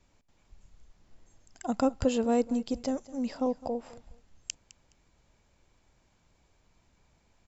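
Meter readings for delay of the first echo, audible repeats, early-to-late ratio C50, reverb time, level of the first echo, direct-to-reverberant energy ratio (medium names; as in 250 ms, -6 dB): 209 ms, 2, no reverb, no reverb, -19.0 dB, no reverb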